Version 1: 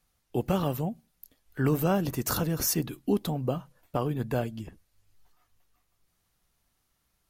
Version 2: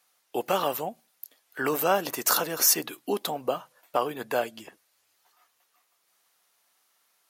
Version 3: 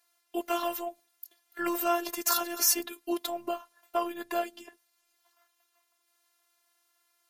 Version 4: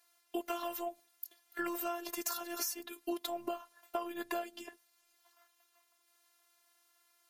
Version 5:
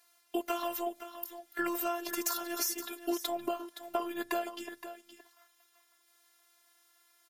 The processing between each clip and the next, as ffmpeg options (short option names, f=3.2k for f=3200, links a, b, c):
-af "highpass=580,volume=7.5dB"
-af "afftfilt=real='hypot(re,im)*cos(PI*b)':imag='0':win_size=512:overlap=0.75"
-af "acompressor=threshold=-34dB:ratio=12,volume=1dB"
-af "aecho=1:1:519:0.251,volume=4dB"